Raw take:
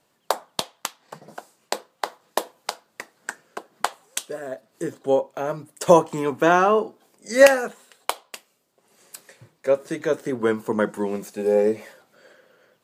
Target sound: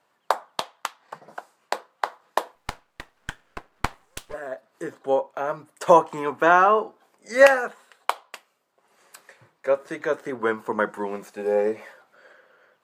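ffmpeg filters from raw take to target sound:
-filter_complex "[0:a]equalizer=f=1.2k:w=0.46:g=13,asettb=1/sr,asplit=3[a][b][c];[a]atrim=end=2.554[d];[b]atrim=start=2.55:end=4.34,asetpts=PTS-STARTPTS,afade=t=in:d=0.004:c=qsin,afade=t=out:st=1.786:d=0.004:c=qsin,aeval=exprs='max(val(0),0)':c=same[e];[c]atrim=start=4.336[f];[d][e]acrossfade=d=0.004:c1=hsin:c2=qsin[g];[g][f]acrossfade=d=0.004:c1=qsin:c2=hsin,volume=-9.5dB"

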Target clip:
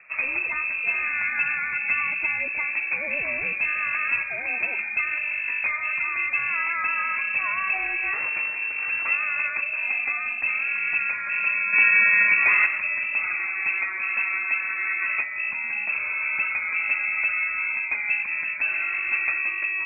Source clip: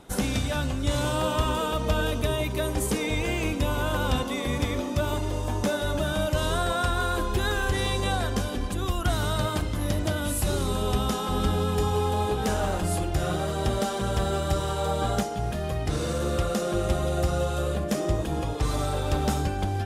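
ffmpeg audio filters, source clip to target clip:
-filter_complex "[0:a]asettb=1/sr,asplit=3[a][b][c];[a]atrim=end=8.134[d];[b]atrim=start=8.13:end=9.11,asetpts=PTS-STARTPTS,afade=t=in:d=0.004:c=qsin,afade=t=out:st=0.976:d=0.004:c=qsin,aeval=exprs='abs(val(0))':c=same[e];[c]atrim=start=9.106[f];[d][e]acrossfade=d=0.004:c1=hsin:c2=qsin[g];[g][f]acrossfade=d=0.004:c1=qsin:c2=hsin,asplit=3[h][i][j];[h]afade=t=out:st=11.72:d=0.02[k];[i]acontrast=89,afade=t=in:st=11.72:d=0.02,afade=t=out:st=12.65:d=0.02[l];[j]afade=t=in:st=12.65:d=0.02[m];[k][l][m]amix=inputs=3:normalize=0,lowpass=f=2.3k:t=q:w=0.5098,lowpass=f=2.3k:t=q:w=0.6013,lowpass=f=2.3k:t=q:w=0.9,lowpass=f=2.3k:t=q:w=2.563,afreqshift=-2700"

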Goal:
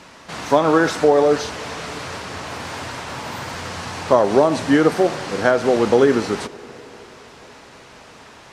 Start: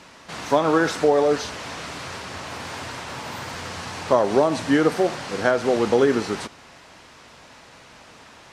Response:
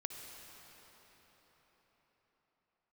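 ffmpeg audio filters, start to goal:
-filter_complex "[0:a]asplit=2[a][b];[1:a]atrim=start_sample=2205,lowpass=2.2k[c];[b][c]afir=irnorm=-1:irlink=0,volume=-13dB[d];[a][d]amix=inputs=2:normalize=0,volume=2.5dB"

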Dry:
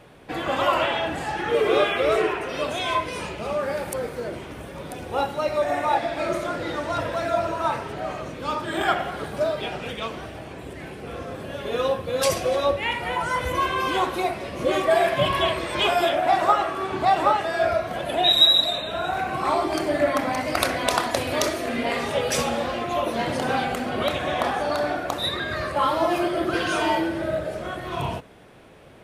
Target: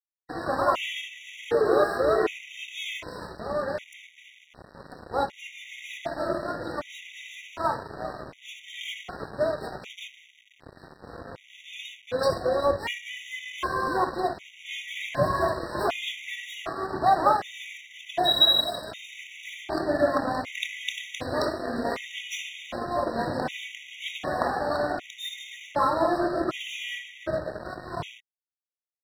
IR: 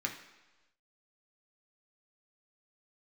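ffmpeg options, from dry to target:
-af "lowpass=4.5k,aeval=exprs='sgn(val(0))*max(abs(val(0))-0.0188,0)':c=same,afftfilt=real='re*gt(sin(2*PI*0.66*pts/sr)*(1-2*mod(floor(b*sr/1024/1900),2)),0)':imag='im*gt(sin(2*PI*0.66*pts/sr)*(1-2*mod(floor(b*sr/1024/1900),2)),0)':win_size=1024:overlap=0.75"

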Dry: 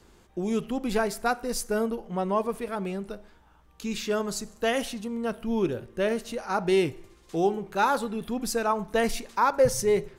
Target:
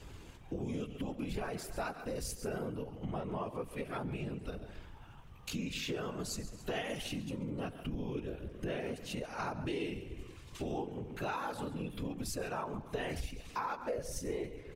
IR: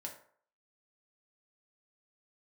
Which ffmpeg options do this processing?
-af "atempo=0.69,aecho=1:1:137|274|411:0.15|0.0404|0.0109,afftfilt=real='hypot(re,im)*cos(2*PI*random(0))':imag='hypot(re,im)*sin(2*PI*random(1))':win_size=512:overlap=0.75,lowshelf=f=110:g=10.5,acompressor=threshold=-45dB:ratio=5,equalizer=f=2.7k:t=o:w=0.69:g=7,volume=7.5dB"

